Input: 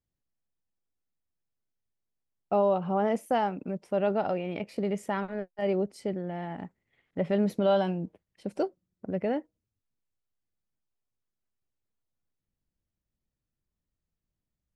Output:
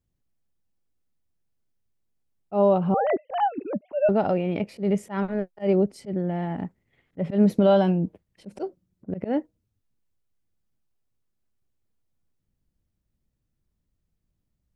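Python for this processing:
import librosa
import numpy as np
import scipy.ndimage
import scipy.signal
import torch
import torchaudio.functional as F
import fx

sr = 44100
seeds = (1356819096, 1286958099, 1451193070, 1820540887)

y = fx.sine_speech(x, sr, at=(2.94, 4.09))
y = fx.auto_swell(y, sr, attack_ms=112.0)
y = fx.low_shelf(y, sr, hz=440.0, db=8.0)
y = y * librosa.db_to_amplitude(2.5)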